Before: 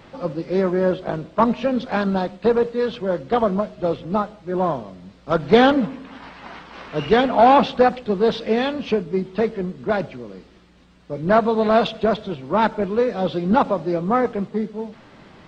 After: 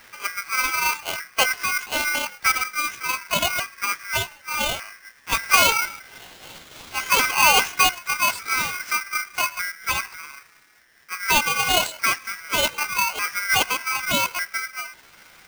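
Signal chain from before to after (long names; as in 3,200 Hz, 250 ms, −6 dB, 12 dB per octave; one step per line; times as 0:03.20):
pitch shifter swept by a sawtooth +10.5 semitones, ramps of 1,199 ms
ring modulator with a square carrier 1,800 Hz
level −2.5 dB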